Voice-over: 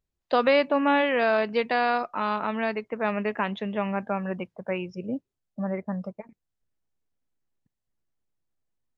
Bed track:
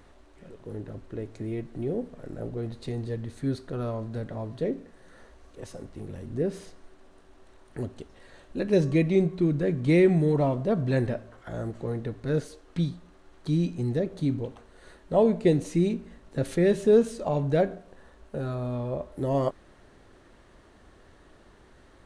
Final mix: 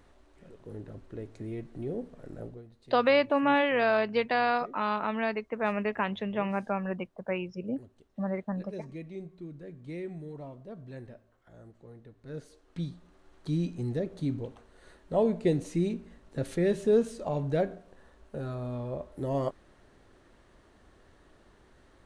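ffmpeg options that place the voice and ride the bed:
-filter_complex "[0:a]adelay=2600,volume=0.75[s0];[1:a]volume=2.99,afade=t=out:st=2.4:d=0.24:silence=0.199526,afade=t=in:st=12.15:d=1.11:silence=0.188365[s1];[s0][s1]amix=inputs=2:normalize=0"

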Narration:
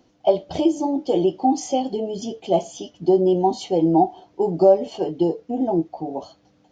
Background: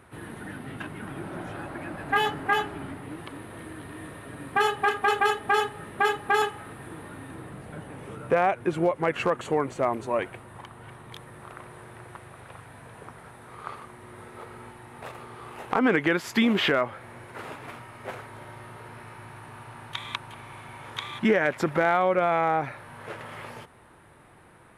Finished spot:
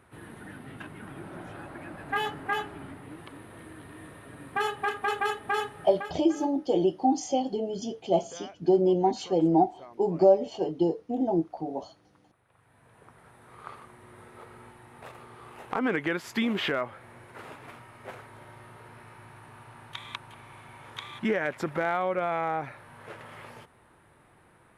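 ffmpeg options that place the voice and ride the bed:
-filter_complex "[0:a]adelay=5600,volume=0.562[s0];[1:a]volume=3.98,afade=t=out:st=5.81:d=0.31:silence=0.133352,afade=t=in:st=12.48:d=1.17:silence=0.133352[s1];[s0][s1]amix=inputs=2:normalize=0"

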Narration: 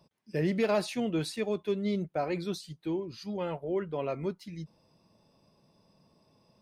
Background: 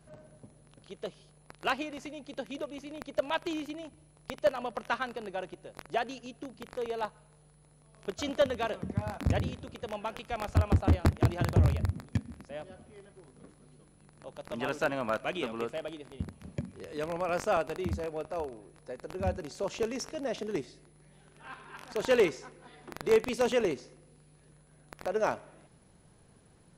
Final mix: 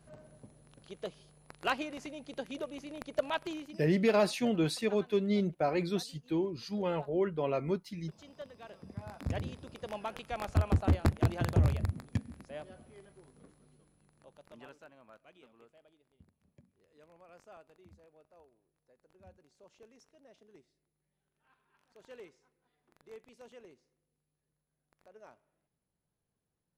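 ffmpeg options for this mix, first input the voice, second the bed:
-filter_complex "[0:a]adelay=3450,volume=1.12[s0];[1:a]volume=6.68,afade=t=out:st=3.26:d=0.69:silence=0.112202,afade=t=in:st=8.58:d=1.36:silence=0.125893,afade=t=out:st=12.95:d=1.89:silence=0.0668344[s1];[s0][s1]amix=inputs=2:normalize=0"

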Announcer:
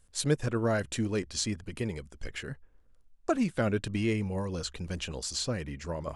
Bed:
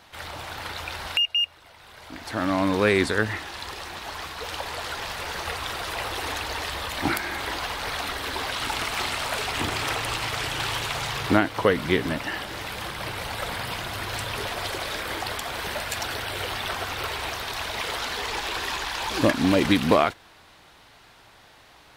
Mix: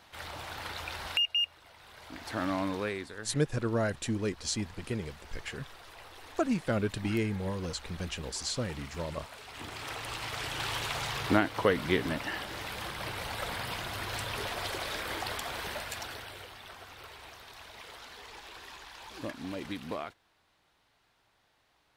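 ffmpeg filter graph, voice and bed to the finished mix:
-filter_complex "[0:a]adelay=3100,volume=0.841[s0];[1:a]volume=2.82,afade=t=out:st=2.33:d=0.71:silence=0.188365,afade=t=in:st=9.43:d=1.43:silence=0.188365,afade=t=out:st=15.46:d=1.05:silence=0.223872[s1];[s0][s1]amix=inputs=2:normalize=0"

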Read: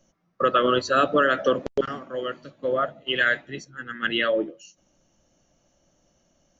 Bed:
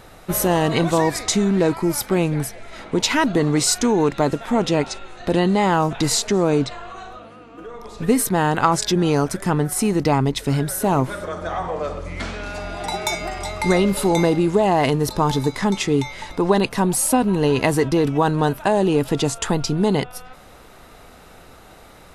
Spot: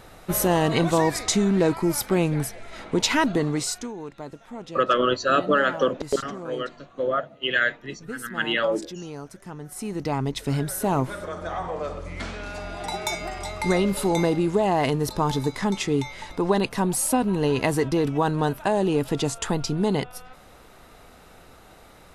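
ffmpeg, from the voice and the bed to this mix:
-filter_complex "[0:a]adelay=4350,volume=0.944[s0];[1:a]volume=3.76,afade=t=out:st=3.19:d=0.74:silence=0.158489,afade=t=in:st=9.6:d=0.96:silence=0.199526[s1];[s0][s1]amix=inputs=2:normalize=0"

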